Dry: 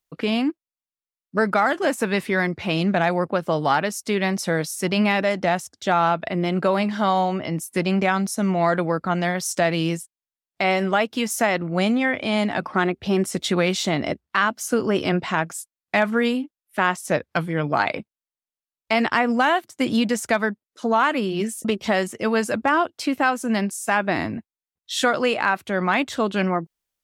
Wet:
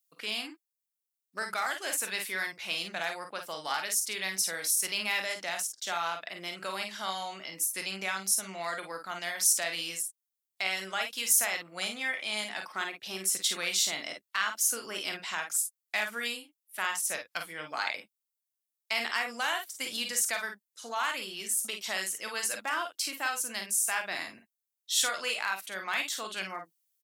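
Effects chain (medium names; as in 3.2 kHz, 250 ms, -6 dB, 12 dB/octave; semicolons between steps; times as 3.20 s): differentiator; early reflections 26 ms -16 dB, 42 ms -9 dB, 52 ms -7.5 dB; trim +2.5 dB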